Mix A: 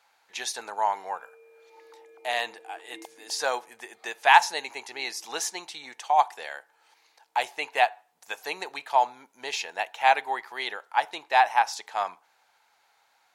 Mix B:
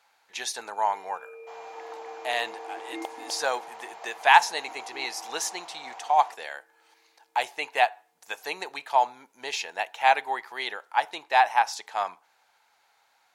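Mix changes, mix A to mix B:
first sound +9.5 dB
second sound: unmuted

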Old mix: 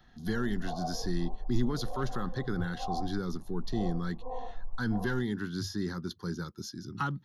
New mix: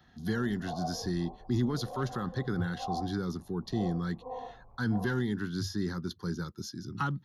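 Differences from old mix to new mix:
speech: add low-shelf EQ 81 Hz +8 dB
master: add high-pass filter 65 Hz

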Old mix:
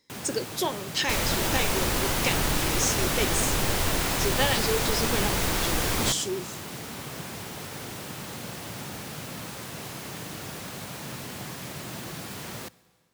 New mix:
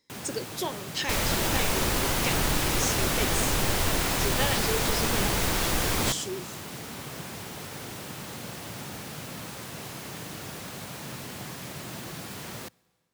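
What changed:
speech −4.0 dB
first sound: send −7.5 dB

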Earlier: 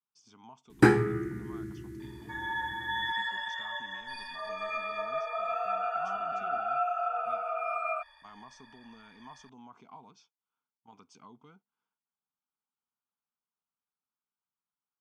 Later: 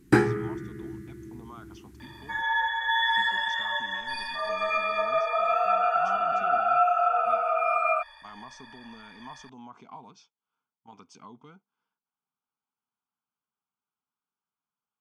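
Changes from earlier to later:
speech +5.5 dB
first sound: entry −0.70 s
second sound +8.0 dB

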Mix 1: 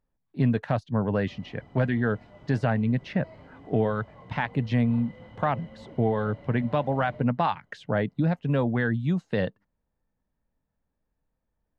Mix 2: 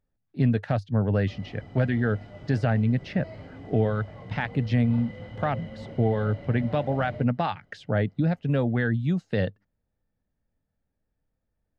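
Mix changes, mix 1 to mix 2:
background +6.0 dB
master: add thirty-one-band graphic EQ 100 Hz +7 dB, 1,000 Hz −9 dB, 5,000 Hz +4 dB

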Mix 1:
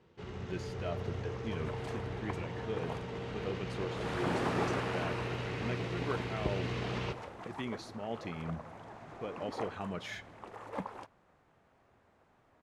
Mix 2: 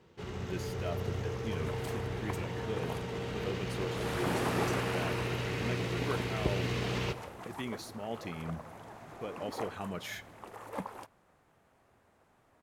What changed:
first sound +3.0 dB
master: remove high-frequency loss of the air 76 metres

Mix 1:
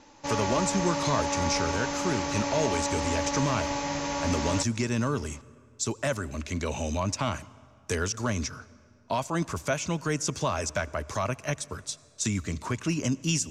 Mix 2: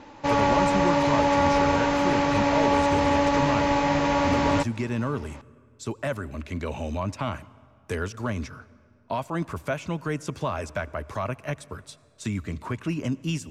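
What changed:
background +9.0 dB
master: add parametric band 6,300 Hz −14.5 dB 1.1 octaves

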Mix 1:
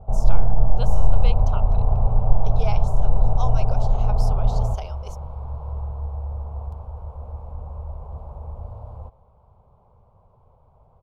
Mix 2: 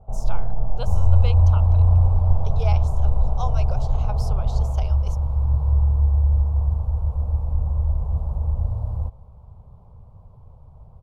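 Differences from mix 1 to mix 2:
first sound −6.0 dB
second sound: add bass and treble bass +12 dB, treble +10 dB

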